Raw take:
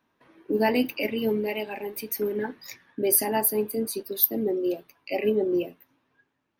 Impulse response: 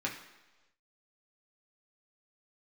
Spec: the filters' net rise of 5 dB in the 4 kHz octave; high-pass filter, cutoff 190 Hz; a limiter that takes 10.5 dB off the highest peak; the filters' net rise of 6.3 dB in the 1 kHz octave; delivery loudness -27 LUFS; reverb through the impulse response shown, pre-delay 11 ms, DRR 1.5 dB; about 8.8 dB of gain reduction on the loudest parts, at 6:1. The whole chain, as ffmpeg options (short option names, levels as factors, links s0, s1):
-filter_complex "[0:a]highpass=190,equalizer=f=1000:t=o:g=7.5,equalizer=f=4000:t=o:g=6.5,acompressor=threshold=0.0708:ratio=6,alimiter=limit=0.0668:level=0:latency=1,asplit=2[s0][s1];[1:a]atrim=start_sample=2205,adelay=11[s2];[s1][s2]afir=irnorm=-1:irlink=0,volume=0.501[s3];[s0][s3]amix=inputs=2:normalize=0,volume=1.58"